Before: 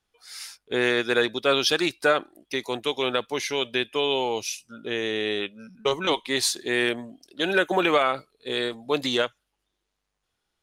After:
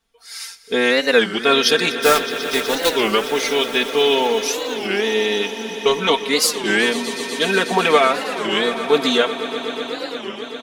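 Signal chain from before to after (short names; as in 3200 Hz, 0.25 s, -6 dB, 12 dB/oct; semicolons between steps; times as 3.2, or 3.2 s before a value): 1.93–2.96 block floating point 3-bit; comb 4.4 ms, depth 90%; swelling echo 0.123 s, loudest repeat 5, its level -16 dB; record warp 33 1/3 rpm, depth 250 cents; gain +4 dB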